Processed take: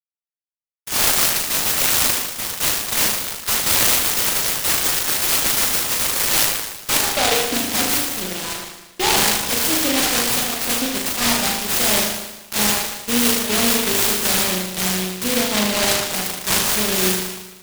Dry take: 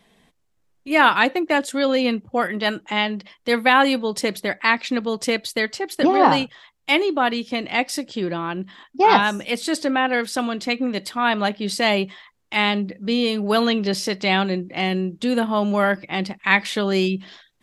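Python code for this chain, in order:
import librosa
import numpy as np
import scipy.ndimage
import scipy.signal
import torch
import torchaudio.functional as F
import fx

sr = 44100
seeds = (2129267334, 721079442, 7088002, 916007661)

p1 = fx.filter_sweep_highpass(x, sr, from_hz=3500.0, to_hz=80.0, start_s=6.33, end_s=8.2, q=4.9)
p2 = fx.level_steps(p1, sr, step_db=20)
p3 = p1 + (p2 * 10.0 ** (-2.0 / 20.0))
p4 = librosa.effects.preemphasis(p3, coef=0.9, zi=[0.0])
p5 = fx.fuzz(p4, sr, gain_db=34.0, gate_db=-40.0)
p6 = p5 + fx.room_flutter(p5, sr, wall_m=6.5, rt60_s=1.1, dry=0)
p7 = fx.noise_mod_delay(p6, sr, seeds[0], noise_hz=2800.0, depth_ms=0.21)
y = p7 * 10.0 ** (-4.0 / 20.0)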